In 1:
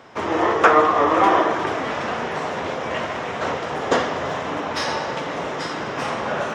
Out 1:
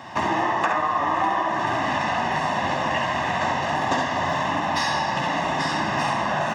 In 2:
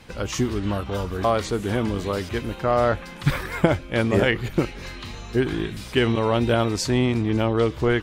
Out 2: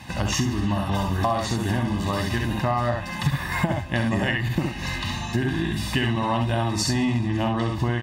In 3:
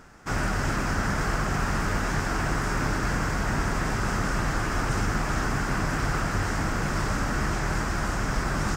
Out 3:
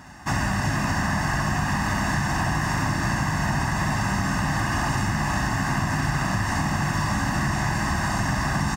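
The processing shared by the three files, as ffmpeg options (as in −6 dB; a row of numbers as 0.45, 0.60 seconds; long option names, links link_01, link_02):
-filter_complex "[0:a]highpass=72,aecho=1:1:1.1:0.84,asplit=2[link_01][link_02];[link_02]aecho=0:1:52|67:0.335|0.631[link_03];[link_01][link_03]amix=inputs=2:normalize=0,acompressor=threshold=-25dB:ratio=6,asplit=2[link_04][link_05];[link_05]aecho=0:1:140|280|420:0.0891|0.0392|0.0173[link_06];[link_04][link_06]amix=inputs=2:normalize=0,volume=4.5dB"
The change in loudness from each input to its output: −1.5, −1.0, +3.0 LU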